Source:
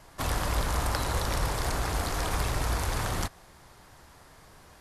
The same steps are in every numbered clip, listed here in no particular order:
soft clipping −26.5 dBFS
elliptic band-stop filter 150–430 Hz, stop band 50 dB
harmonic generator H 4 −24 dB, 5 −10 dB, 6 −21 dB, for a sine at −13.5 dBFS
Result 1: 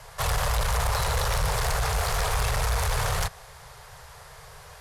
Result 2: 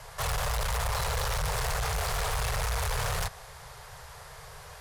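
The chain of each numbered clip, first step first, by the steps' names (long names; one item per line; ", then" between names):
soft clipping, then elliptic band-stop filter, then harmonic generator
harmonic generator, then soft clipping, then elliptic band-stop filter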